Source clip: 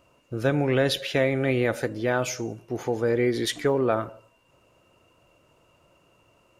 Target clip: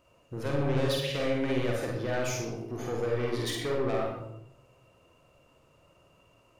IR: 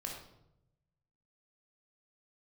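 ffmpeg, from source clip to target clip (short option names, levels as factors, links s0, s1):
-filter_complex "[0:a]asoftclip=type=tanh:threshold=0.0631,asplit=2[s0][s1];[1:a]atrim=start_sample=2205,adelay=48[s2];[s1][s2]afir=irnorm=-1:irlink=0,volume=1.19[s3];[s0][s3]amix=inputs=2:normalize=0,volume=0.562"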